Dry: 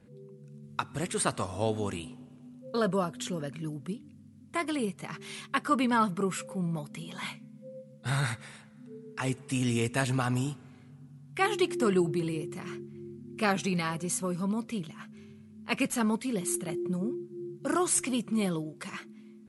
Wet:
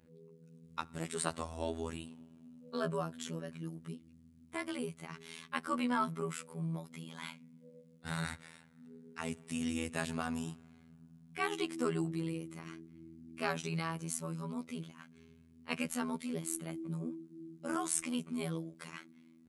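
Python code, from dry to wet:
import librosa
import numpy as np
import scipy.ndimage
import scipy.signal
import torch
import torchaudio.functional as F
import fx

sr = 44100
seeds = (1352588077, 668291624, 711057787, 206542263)

y = fx.robotise(x, sr, hz=81.8)
y = y * librosa.db_to_amplitude(-5.0)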